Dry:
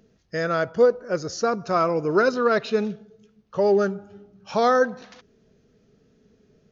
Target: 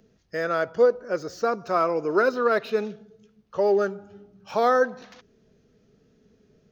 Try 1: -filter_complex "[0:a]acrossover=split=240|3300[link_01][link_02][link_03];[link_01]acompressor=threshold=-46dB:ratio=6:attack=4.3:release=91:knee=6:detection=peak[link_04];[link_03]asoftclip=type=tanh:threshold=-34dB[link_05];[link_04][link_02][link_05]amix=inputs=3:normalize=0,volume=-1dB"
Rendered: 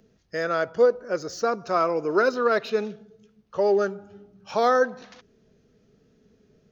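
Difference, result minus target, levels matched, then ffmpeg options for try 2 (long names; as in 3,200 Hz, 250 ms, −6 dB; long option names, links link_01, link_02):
soft clipping: distortion −9 dB
-filter_complex "[0:a]acrossover=split=240|3300[link_01][link_02][link_03];[link_01]acompressor=threshold=-46dB:ratio=6:attack=4.3:release=91:knee=6:detection=peak[link_04];[link_03]asoftclip=type=tanh:threshold=-45dB[link_05];[link_04][link_02][link_05]amix=inputs=3:normalize=0,volume=-1dB"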